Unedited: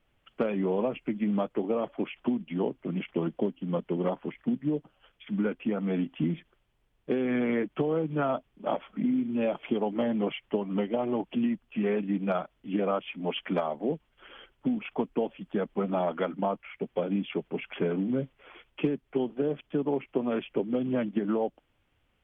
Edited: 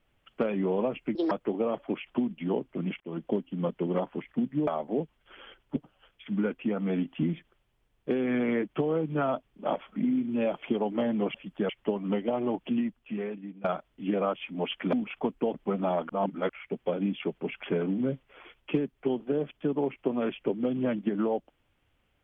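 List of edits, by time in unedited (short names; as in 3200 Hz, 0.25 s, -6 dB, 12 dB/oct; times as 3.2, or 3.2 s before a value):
1.15–1.41 speed 160%
3.1–3.37 fade in
11.35–12.3 fade out, to -21 dB
13.59–14.68 move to 4.77
15.29–15.64 move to 10.35
16.19–16.59 reverse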